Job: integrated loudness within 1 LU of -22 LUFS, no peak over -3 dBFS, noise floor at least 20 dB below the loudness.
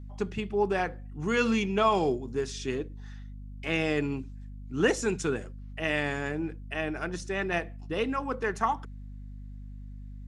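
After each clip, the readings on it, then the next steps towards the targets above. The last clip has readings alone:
hum 50 Hz; harmonics up to 250 Hz; hum level -39 dBFS; loudness -30.0 LUFS; peak -11.5 dBFS; loudness target -22.0 LUFS
-> de-hum 50 Hz, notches 5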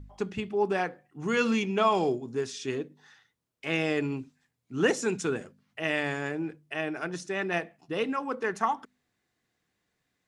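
hum none; loudness -30.0 LUFS; peak -11.5 dBFS; loudness target -22.0 LUFS
-> gain +8 dB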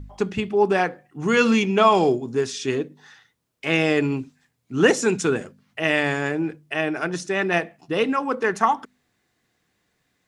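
loudness -22.0 LUFS; peak -3.5 dBFS; noise floor -72 dBFS

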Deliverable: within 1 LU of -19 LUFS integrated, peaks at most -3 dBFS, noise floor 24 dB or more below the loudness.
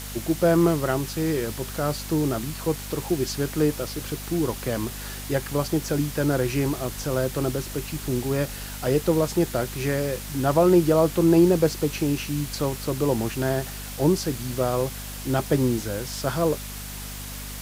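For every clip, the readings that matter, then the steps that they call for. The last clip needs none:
hum 50 Hz; harmonics up to 250 Hz; hum level -36 dBFS; noise floor -36 dBFS; noise floor target -49 dBFS; loudness -24.5 LUFS; peak -7.0 dBFS; loudness target -19.0 LUFS
-> de-hum 50 Hz, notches 5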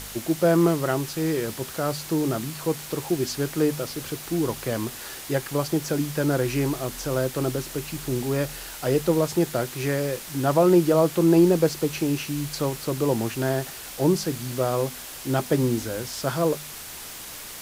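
hum none; noise floor -39 dBFS; noise floor target -49 dBFS
-> denoiser 10 dB, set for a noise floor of -39 dBFS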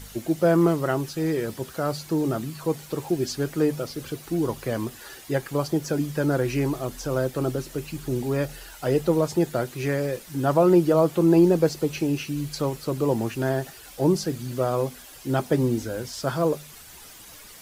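noise floor -45 dBFS; noise floor target -49 dBFS
-> denoiser 6 dB, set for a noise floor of -45 dBFS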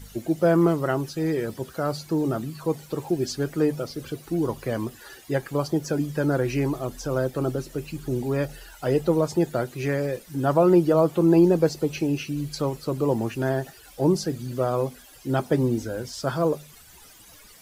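noise floor -50 dBFS; loudness -25.0 LUFS; peak -7.0 dBFS; loudness target -19.0 LUFS
-> gain +6 dB; limiter -3 dBFS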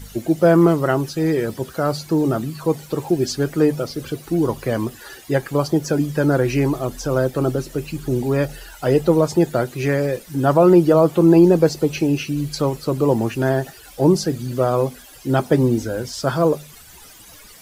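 loudness -19.0 LUFS; peak -3.0 dBFS; noise floor -44 dBFS

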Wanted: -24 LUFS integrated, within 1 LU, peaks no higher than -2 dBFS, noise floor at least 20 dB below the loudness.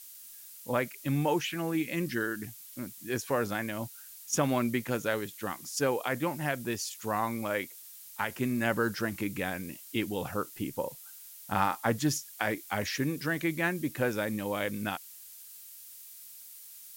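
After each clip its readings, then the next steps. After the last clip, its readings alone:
noise floor -49 dBFS; noise floor target -52 dBFS; loudness -32.0 LUFS; peak -12.5 dBFS; loudness target -24.0 LUFS
-> denoiser 6 dB, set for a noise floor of -49 dBFS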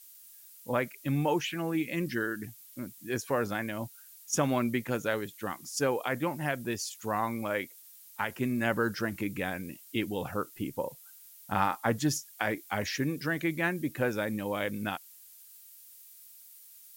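noise floor -54 dBFS; loudness -32.0 LUFS; peak -12.5 dBFS; loudness target -24.0 LUFS
-> gain +8 dB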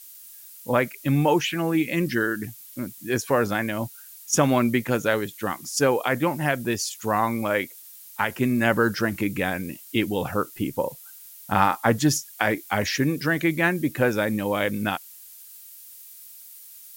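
loudness -24.0 LUFS; peak -4.5 dBFS; noise floor -46 dBFS

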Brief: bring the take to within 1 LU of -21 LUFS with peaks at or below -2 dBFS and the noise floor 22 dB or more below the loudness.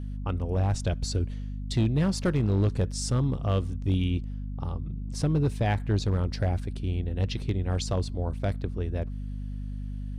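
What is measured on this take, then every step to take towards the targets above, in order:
clipped 0.8%; flat tops at -17.5 dBFS; hum 50 Hz; harmonics up to 250 Hz; hum level -31 dBFS; loudness -29.0 LUFS; peak -17.5 dBFS; loudness target -21.0 LUFS
-> clip repair -17.5 dBFS; notches 50/100/150/200/250 Hz; gain +8 dB

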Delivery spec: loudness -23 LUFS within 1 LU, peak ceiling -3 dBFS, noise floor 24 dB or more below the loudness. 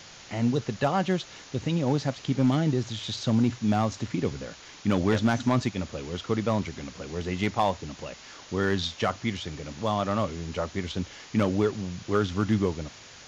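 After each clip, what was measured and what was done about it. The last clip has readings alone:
clipped 0.3%; flat tops at -14.5 dBFS; noise floor -48 dBFS; noise floor target -52 dBFS; loudness -28.0 LUFS; peak -14.5 dBFS; loudness target -23.0 LUFS
-> clip repair -14.5 dBFS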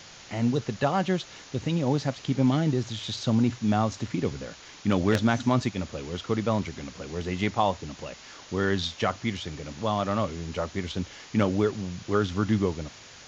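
clipped 0.0%; noise floor -48 dBFS; noise floor target -52 dBFS
-> noise print and reduce 6 dB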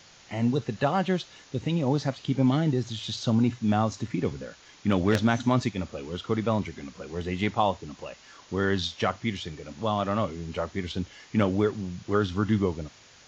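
noise floor -54 dBFS; loudness -28.0 LUFS; peak -5.5 dBFS; loudness target -23.0 LUFS
-> gain +5 dB; limiter -3 dBFS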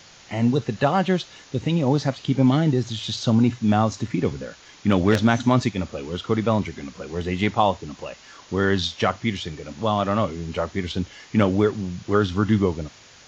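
loudness -23.0 LUFS; peak -3.0 dBFS; noise floor -49 dBFS

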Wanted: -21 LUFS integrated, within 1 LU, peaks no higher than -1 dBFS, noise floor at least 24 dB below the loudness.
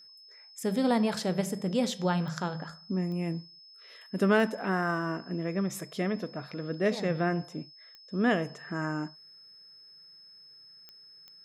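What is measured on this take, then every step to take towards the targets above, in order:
clicks 6; steady tone 5200 Hz; tone level -51 dBFS; loudness -30.5 LUFS; peak -12.5 dBFS; loudness target -21.0 LUFS
-> de-click; notch 5200 Hz, Q 30; gain +9.5 dB

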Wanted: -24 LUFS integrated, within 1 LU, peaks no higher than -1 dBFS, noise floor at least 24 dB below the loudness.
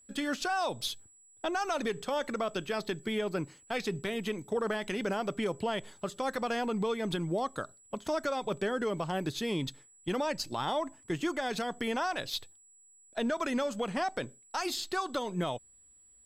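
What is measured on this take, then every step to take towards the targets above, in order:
steady tone 7800 Hz; tone level -58 dBFS; loudness -33.5 LUFS; peak -22.5 dBFS; loudness target -24.0 LUFS
-> notch 7800 Hz, Q 30; gain +9.5 dB

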